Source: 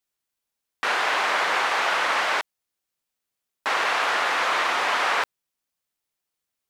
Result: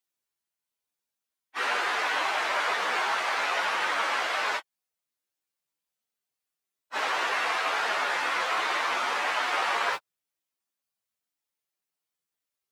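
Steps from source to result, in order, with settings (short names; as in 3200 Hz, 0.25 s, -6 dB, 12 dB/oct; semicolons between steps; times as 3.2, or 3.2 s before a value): low shelf 80 Hz -9 dB; plain phase-vocoder stretch 1.9×; gain -2 dB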